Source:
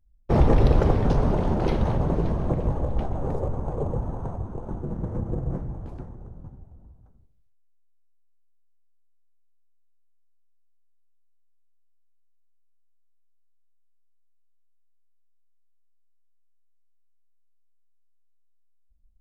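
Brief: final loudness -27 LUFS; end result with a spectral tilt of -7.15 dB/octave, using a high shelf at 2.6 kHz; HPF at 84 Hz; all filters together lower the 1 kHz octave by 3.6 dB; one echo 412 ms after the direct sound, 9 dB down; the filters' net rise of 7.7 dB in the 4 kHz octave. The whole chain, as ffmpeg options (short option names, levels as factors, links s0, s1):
-af "highpass=84,equalizer=f=1000:t=o:g=-6,highshelf=f=2600:g=6.5,equalizer=f=4000:t=o:g=4.5,aecho=1:1:412:0.355,volume=1.06"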